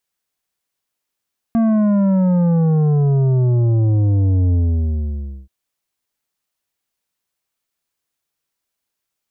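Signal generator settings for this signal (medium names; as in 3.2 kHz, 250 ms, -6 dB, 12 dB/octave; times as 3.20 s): sub drop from 230 Hz, over 3.93 s, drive 9 dB, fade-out 0.95 s, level -13 dB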